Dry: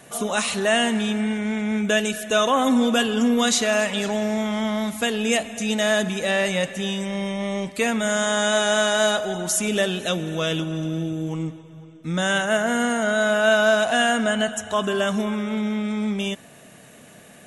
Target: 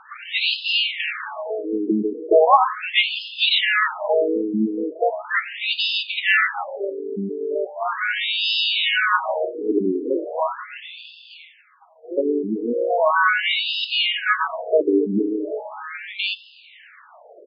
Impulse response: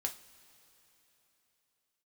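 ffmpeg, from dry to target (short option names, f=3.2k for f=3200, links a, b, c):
-filter_complex "[0:a]asplit=3[a][b][c];[b]asetrate=33038,aresample=44100,atempo=1.33484,volume=-2dB[d];[c]asetrate=66075,aresample=44100,atempo=0.66742,volume=-12dB[e];[a][d][e]amix=inputs=3:normalize=0,asplit=2[f][g];[1:a]atrim=start_sample=2205[h];[g][h]afir=irnorm=-1:irlink=0,volume=-5.5dB[i];[f][i]amix=inputs=2:normalize=0,afftfilt=real='re*between(b*sr/1024,300*pow(3700/300,0.5+0.5*sin(2*PI*0.38*pts/sr))/1.41,300*pow(3700/300,0.5+0.5*sin(2*PI*0.38*pts/sr))*1.41)':imag='im*between(b*sr/1024,300*pow(3700/300,0.5+0.5*sin(2*PI*0.38*pts/sr))/1.41,300*pow(3700/300,0.5+0.5*sin(2*PI*0.38*pts/sr))*1.41)':win_size=1024:overlap=0.75,volume=3.5dB"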